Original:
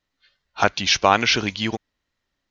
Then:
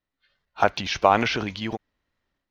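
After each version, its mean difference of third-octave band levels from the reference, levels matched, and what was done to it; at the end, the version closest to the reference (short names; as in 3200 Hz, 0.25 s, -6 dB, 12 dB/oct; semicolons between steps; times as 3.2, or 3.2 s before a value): 3.0 dB: block floating point 7-bit; LPF 2200 Hz 6 dB/oct; dynamic EQ 690 Hz, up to +5 dB, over -30 dBFS, Q 0.99; transient shaper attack +3 dB, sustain +8 dB; gain -6 dB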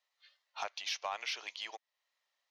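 9.5 dB: HPF 620 Hz 24 dB/oct; bell 1500 Hz -9 dB 0.2 oct; compressor 2:1, threshold -44 dBFS, peak gain reduction 17.5 dB; soft clip -21.5 dBFS, distortion -21 dB; gain -3 dB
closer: first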